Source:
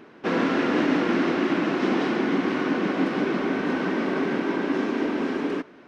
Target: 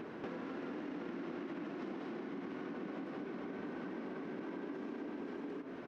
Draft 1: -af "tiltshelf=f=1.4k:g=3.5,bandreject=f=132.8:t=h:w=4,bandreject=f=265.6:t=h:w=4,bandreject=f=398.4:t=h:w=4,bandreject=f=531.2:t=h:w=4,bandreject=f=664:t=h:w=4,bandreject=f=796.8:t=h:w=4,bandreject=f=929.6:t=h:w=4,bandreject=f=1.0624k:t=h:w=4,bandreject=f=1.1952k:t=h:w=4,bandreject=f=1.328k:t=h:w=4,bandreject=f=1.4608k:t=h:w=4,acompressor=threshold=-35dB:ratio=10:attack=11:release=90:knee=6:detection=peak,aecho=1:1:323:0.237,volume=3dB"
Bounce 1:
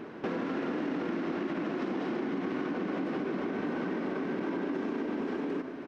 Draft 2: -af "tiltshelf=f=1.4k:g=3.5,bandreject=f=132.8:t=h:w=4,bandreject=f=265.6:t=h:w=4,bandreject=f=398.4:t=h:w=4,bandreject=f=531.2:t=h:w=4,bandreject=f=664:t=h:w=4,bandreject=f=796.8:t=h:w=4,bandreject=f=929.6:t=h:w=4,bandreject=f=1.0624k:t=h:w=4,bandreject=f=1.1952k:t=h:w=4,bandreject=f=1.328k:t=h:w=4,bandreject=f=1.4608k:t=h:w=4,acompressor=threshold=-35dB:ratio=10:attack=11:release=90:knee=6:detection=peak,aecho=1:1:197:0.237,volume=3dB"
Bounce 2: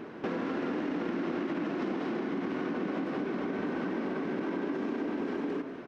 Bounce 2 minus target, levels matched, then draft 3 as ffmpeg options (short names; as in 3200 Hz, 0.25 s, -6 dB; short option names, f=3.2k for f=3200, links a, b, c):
compressor: peak gain reduction -10.5 dB
-af "tiltshelf=f=1.4k:g=3.5,bandreject=f=132.8:t=h:w=4,bandreject=f=265.6:t=h:w=4,bandreject=f=398.4:t=h:w=4,bandreject=f=531.2:t=h:w=4,bandreject=f=664:t=h:w=4,bandreject=f=796.8:t=h:w=4,bandreject=f=929.6:t=h:w=4,bandreject=f=1.0624k:t=h:w=4,bandreject=f=1.1952k:t=h:w=4,bandreject=f=1.328k:t=h:w=4,bandreject=f=1.4608k:t=h:w=4,acompressor=threshold=-46.5dB:ratio=10:attack=11:release=90:knee=6:detection=peak,aecho=1:1:197:0.237,volume=3dB"